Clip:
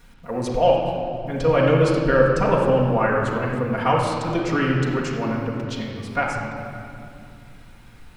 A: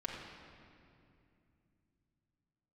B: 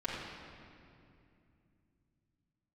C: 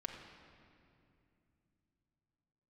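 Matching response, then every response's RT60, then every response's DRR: B; 2.5 s, 2.6 s, 2.6 s; -4.0 dB, -8.5 dB, 0.5 dB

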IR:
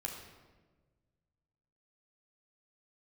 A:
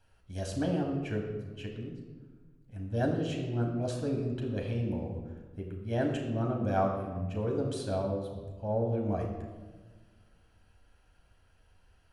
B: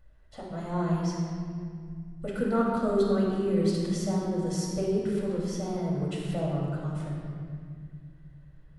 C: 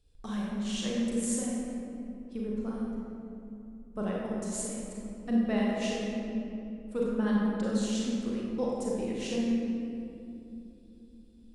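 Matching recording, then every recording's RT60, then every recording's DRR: A; 1.4 s, 2.1 s, 3.0 s; 0.0 dB, -5.0 dB, -4.5 dB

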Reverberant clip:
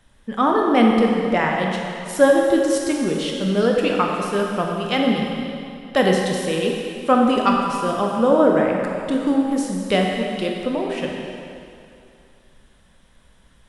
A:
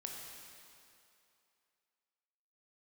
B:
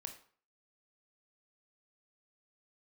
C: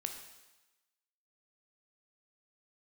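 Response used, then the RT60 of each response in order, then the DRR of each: A; 2.7 s, 0.50 s, 1.1 s; -0.5 dB, 5.0 dB, 4.5 dB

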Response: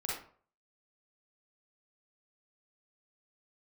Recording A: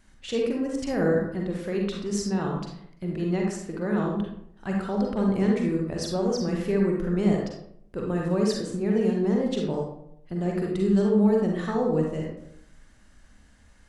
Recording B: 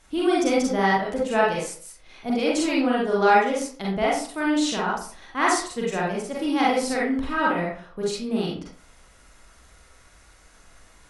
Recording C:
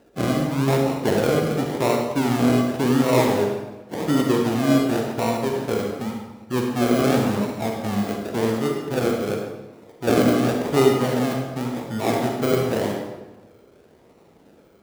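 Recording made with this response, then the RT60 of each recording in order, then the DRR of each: B; 0.70 s, 0.50 s, 1.1 s; -1.0 dB, -5.5 dB, 1.0 dB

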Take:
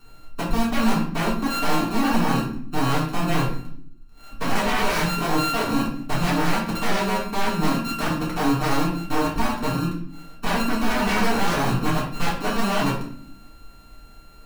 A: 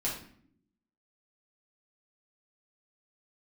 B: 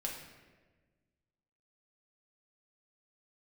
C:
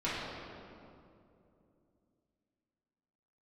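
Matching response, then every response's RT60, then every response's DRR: A; no single decay rate, 1.4 s, 2.7 s; -7.0 dB, -2.0 dB, -11.0 dB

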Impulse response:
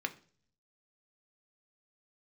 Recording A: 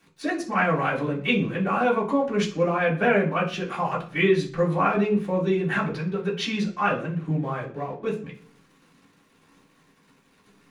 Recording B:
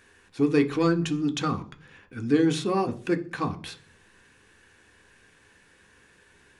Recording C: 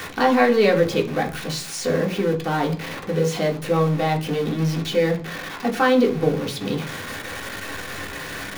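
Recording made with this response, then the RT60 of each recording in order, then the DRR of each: B; 0.45 s, 0.45 s, 0.45 s; -9.0 dB, 6.0 dB, -0.5 dB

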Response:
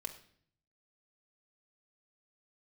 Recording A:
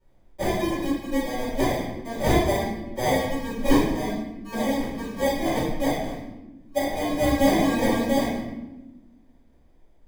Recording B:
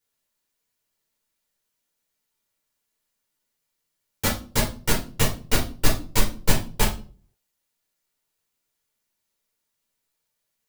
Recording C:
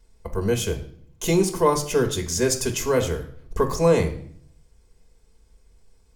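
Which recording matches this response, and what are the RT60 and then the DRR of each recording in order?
C; 1.1 s, 0.40 s, 0.55 s; -13.0 dB, -4.0 dB, 3.0 dB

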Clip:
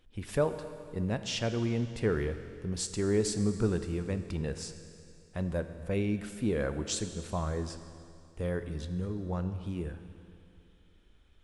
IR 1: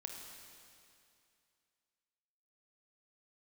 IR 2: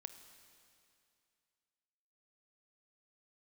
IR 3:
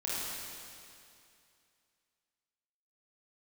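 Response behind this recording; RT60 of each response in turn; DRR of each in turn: 2; 2.5 s, 2.5 s, 2.5 s; 1.5 dB, 9.0 dB, -8.0 dB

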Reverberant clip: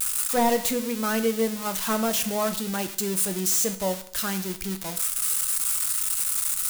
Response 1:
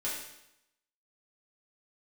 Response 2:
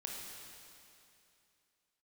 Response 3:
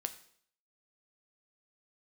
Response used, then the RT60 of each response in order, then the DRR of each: 3; 0.85 s, 2.7 s, 0.60 s; -8.5 dB, -2.0 dB, 8.0 dB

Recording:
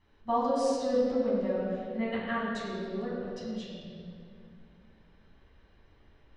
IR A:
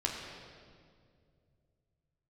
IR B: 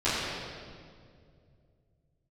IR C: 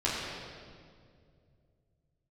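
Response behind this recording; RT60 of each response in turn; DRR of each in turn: C; 2.2 s, 2.2 s, 2.2 s; -2.0 dB, -16.5 dB, -9.0 dB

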